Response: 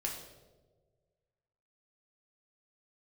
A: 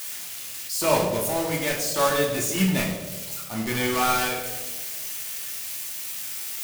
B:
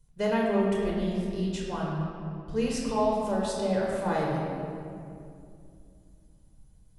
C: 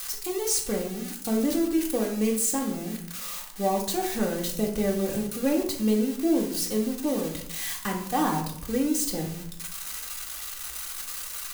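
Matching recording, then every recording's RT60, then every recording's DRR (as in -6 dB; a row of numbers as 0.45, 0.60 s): A; 1.4, 2.5, 0.70 s; -1.5, -4.0, -2.5 dB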